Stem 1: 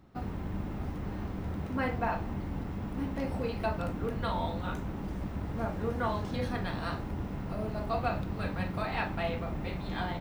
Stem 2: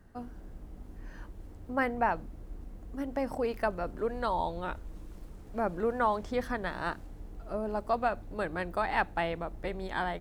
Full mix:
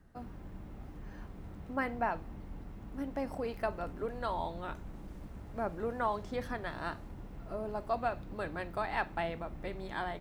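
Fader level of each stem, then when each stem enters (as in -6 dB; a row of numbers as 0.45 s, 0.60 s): -12.5 dB, -5.0 dB; 0.00 s, 0.00 s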